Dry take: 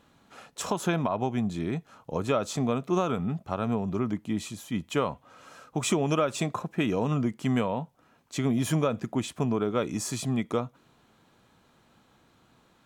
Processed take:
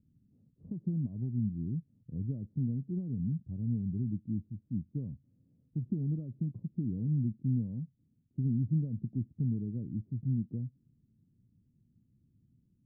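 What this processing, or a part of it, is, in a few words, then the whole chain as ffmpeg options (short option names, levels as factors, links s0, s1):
the neighbour's flat through the wall: -af "lowpass=f=240:w=0.5412,lowpass=f=240:w=1.3066,equalizer=f=110:t=o:w=0.95:g=6.5,volume=0.596"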